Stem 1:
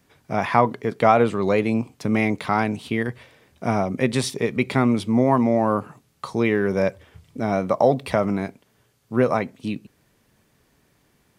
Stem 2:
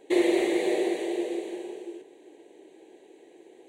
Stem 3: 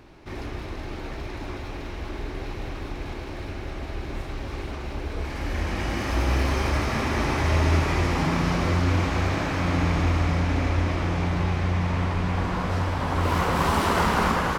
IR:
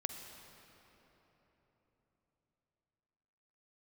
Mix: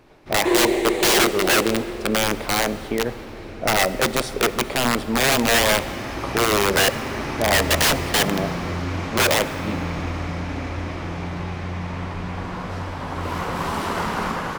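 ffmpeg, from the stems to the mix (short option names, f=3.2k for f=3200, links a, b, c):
-filter_complex "[0:a]equalizer=f=580:w=0.96:g=15,aeval=exprs='(mod(2*val(0)+1,2)-1)/2':c=same,volume=-10dB,asplit=2[a][b];[b]volume=-4dB[c];[1:a]adelay=350,volume=3dB[d];[2:a]volume=-2.5dB[e];[3:a]atrim=start_sample=2205[f];[c][f]afir=irnorm=-1:irlink=0[g];[a][d][e][g]amix=inputs=4:normalize=0,equalizer=f=63:t=o:w=0.53:g=-13"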